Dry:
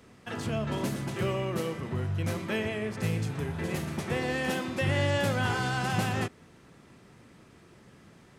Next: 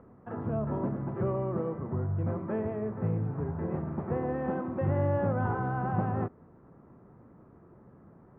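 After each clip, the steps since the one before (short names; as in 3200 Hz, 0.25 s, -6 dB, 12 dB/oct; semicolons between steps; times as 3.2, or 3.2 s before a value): upward compressor, threshold -51 dBFS; LPF 1200 Hz 24 dB/oct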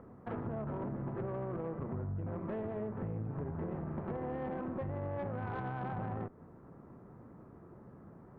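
limiter -24.5 dBFS, peak gain reduction 6.5 dB; compressor 6:1, threshold -36 dBFS, peak gain reduction 8 dB; tube stage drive 35 dB, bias 0.6; gain +4 dB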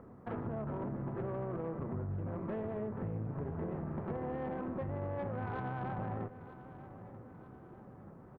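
feedback echo 0.938 s, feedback 48%, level -15 dB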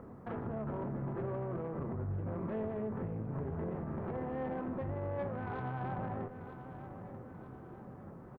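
limiter -33.5 dBFS, peak gain reduction 6 dB; doubler 23 ms -11 dB; gain +3 dB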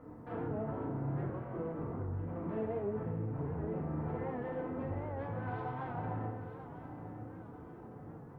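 FDN reverb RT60 0.91 s, low-frequency decay 0.95×, high-frequency decay 0.75×, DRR -7 dB; record warp 78 rpm, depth 100 cents; gain -8 dB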